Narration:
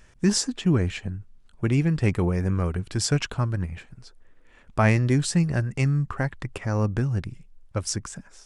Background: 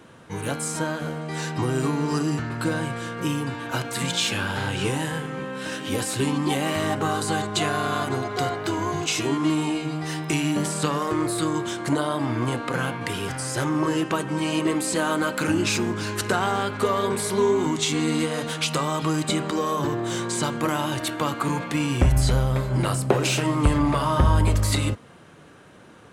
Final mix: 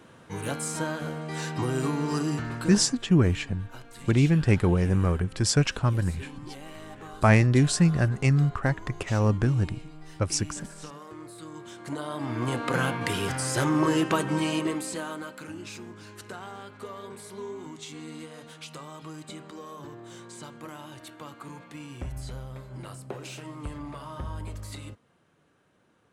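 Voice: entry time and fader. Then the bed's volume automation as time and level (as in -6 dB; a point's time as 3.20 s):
2.45 s, +1.0 dB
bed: 2.54 s -3.5 dB
2.99 s -19 dB
11.40 s -19 dB
12.71 s 0 dB
14.33 s 0 dB
15.46 s -17.5 dB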